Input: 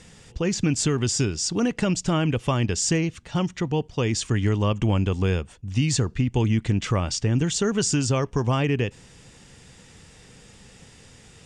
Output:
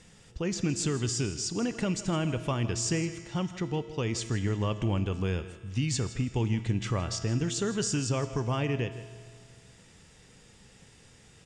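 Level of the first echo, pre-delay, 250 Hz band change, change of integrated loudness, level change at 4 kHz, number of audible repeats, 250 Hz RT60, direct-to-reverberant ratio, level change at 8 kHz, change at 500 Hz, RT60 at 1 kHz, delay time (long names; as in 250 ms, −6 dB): −15.5 dB, 3 ms, −7.0 dB, −6.5 dB, −6.5 dB, 2, 2.1 s, 9.5 dB, −6.5 dB, −6.5 dB, 2.1 s, 161 ms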